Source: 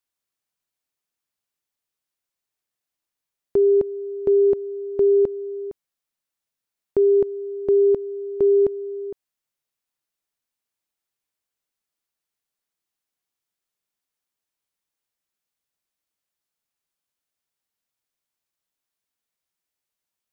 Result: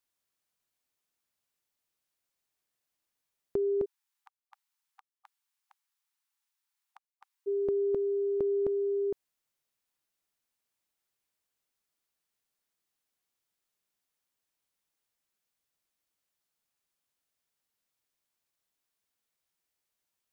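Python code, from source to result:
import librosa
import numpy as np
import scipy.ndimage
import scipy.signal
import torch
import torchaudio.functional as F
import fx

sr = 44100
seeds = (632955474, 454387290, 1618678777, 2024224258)

y = fx.over_compress(x, sr, threshold_db=-22.0, ratio=-1.0)
y = fx.brickwall_highpass(y, sr, low_hz=770.0, at=(3.84, 7.46), fade=0.02)
y = F.gain(torch.from_numpy(y), -4.5).numpy()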